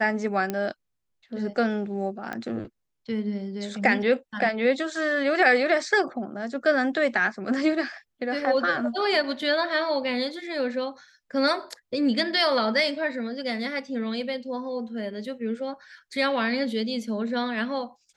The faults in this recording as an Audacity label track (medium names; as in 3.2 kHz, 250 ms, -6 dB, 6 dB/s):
0.500000	0.500000	pop -14 dBFS
2.330000	2.330000	pop -19 dBFS